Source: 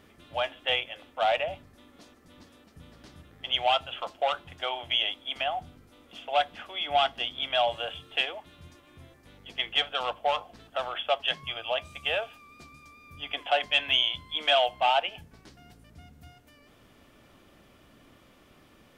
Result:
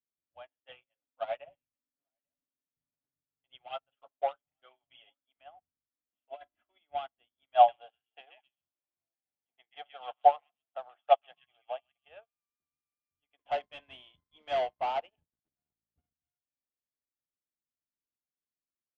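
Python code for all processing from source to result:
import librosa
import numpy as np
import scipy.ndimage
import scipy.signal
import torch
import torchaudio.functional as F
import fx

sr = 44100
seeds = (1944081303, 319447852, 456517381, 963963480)

y = fx.chain(x, sr, fx.comb(ms=7.3, depth=0.75),
    fx.echo_single(ms=841, db=-23.0), at=(0.68, 5.25))
y = fx.chain(y, sr, fx.comb(ms=3.0, depth=0.69),
    fx.over_compress(threshold_db=-26.0, ratio=-1.0), at=(6.3, 6.78))
y = fx.chain(y, sr, fx.highpass(hz=180.0, slope=6),
    fx.peak_eq(hz=750.0, db=11.0, octaves=0.41),
    fx.echo_stepped(ms=131, hz=2400.0, octaves=0.7, feedback_pct=70, wet_db=-0.5), at=(7.55, 12.08))
y = fx.chain(y, sr, fx.peak_eq(hz=1800.0, db=-7.5, octaves=1.9),
    fx.leveller(passes=3), at=(13.39, 16.13))
y = scipy.signal.sosfilt(scipy.signal.butter(2, 2500.0, 'lowpass', fs=sr, output='sos'), y)
y = fx.dynamic_eq(y, sr, hz=630.0, q=0.91, threshold_db=-34.0, ratio=4.0, max_db=3)
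y = fx.upward_expand(y, sr, threshold_db=-43.0, expansion=2.5)
y = y * 10.0 ** (-2.5 / 20.0)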